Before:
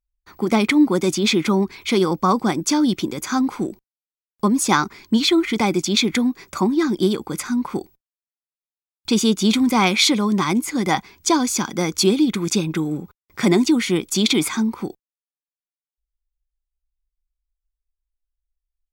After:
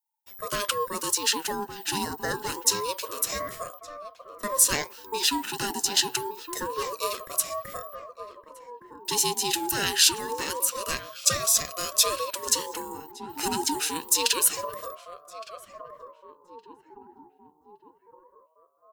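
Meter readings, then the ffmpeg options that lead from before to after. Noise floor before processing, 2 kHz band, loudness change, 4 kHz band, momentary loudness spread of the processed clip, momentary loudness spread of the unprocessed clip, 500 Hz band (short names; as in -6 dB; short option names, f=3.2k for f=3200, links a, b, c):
under -85 dBFS, -7.0 dB, -6.0 dB, -3.5 dB, 21 LU, 8 LU, -10.0 dB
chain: -filter_complex "[0:a]highshelf=f=7.6k:g=7.5,crystalizer=i=4.5:c=0,flanger=delay=4:depth=5:regen=83:speed=1.4:shape=triangular,asplit=2[a][b];[b]adelay=1165,lowpass=f=820:p=1,volume=-9.5dB,asplit=2[c][d];[d]adelay=1165,lowpass=f=820:p=1,volume=0.54,asplit=2[e][f];[f]adelay=1165,lowpass=f=820:p=1,volume=0.54,asplit=2[g][h];[h]adelay=1165,lowpass=f=820:p=1,volume=0.54,asplit=2[i][j];[j]adelay=1165,lowpass=f=820:p=1,volume=0.54,asplit=2[k][l];[l]adelay=1165,lowpass=f=820:p=1,volume=0.54[m];[c][e][g][i][k][m]amix=inputs=6:normalize=0[n];[a][n]amix=inputs=2:normalize=0,aeval=exprs='val(0)*sin(2*PI*740*n/s+740*0.2/0.26*sin(2*PI*0.26*n/s))':c=same,volume=-7dB"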